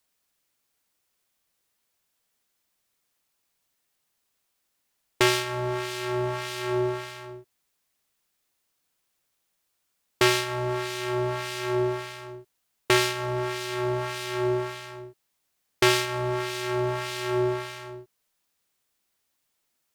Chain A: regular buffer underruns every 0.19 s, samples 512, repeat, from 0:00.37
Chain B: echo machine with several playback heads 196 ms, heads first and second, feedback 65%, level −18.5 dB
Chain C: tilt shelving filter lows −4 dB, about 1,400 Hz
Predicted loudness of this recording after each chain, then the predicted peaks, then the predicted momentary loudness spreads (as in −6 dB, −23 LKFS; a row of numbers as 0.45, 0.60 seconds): −27.0, −27.0, −27.0 LKFS; −2.5, −2.5, −1.0 dBFS; 17, 20, 17 LU